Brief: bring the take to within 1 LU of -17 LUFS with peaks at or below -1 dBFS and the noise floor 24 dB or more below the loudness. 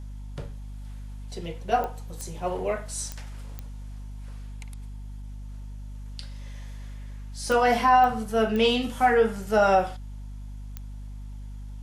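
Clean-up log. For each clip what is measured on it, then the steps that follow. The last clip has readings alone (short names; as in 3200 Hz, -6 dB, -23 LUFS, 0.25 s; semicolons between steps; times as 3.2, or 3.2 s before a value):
clicks 8; hum 50 Hz; harmonics up to 250 Hz; hum level -35 dBFS; loudness -24.0 LUFS; peak -9.5 dBFS; loudness target -17.0 LUFS
-> de-click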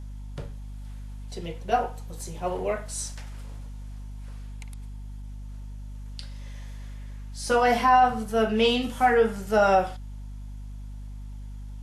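clicks 0; hum 50 Hz; harmonics up to 250 Hz; hum level -35 dBFS
-> de-hum 50 Hz, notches 5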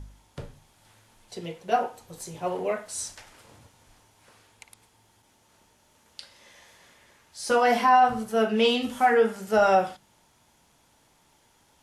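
hum none; loudness -24.0 LUFS; peak -9.5 dBFS; loudness target -17.0 LUFS
-> gain +7 dB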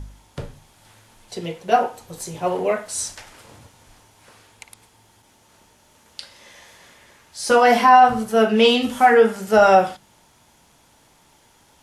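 loudness -17.0 LUFS; peak -2.5 dBFS; noise floor -56 dBFS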